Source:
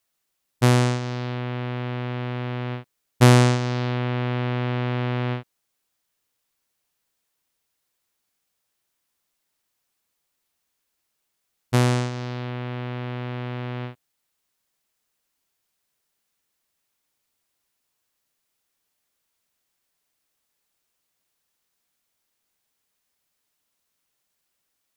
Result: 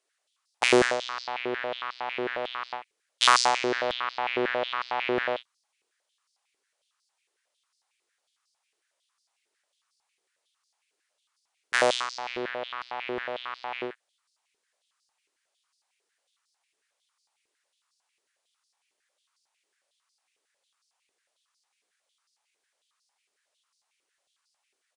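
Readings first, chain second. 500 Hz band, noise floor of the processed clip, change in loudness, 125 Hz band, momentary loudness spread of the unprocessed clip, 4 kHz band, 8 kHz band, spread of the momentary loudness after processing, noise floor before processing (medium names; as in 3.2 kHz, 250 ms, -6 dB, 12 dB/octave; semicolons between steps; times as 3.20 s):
-0.5 dB, -81 dBFS, -3.5 dB, -29.0 dB, 13 LU, +4.0 dB, +0.5 dB, 14 LU, -77 dBFS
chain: resampled via 22.05 kHz; step-sequenced high-pass 11 Hz 400–4800 Hz; trim -1 dB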